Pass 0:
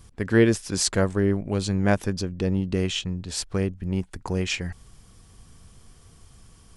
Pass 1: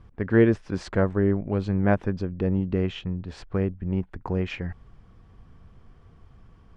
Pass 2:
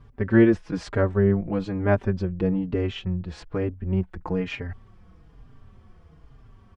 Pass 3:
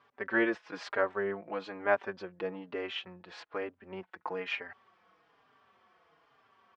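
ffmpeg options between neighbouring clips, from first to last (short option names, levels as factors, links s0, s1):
-af "lowpass=1800"
-filter_complex "[0:a]asplit=2[s0][s1];[s1]adelay=4.5,afreqshift=-1.1[s2];[s0][s2]amix=inputs=2:normalize=1,volume=1.58"
-af "highpass=710,lowpass=4100"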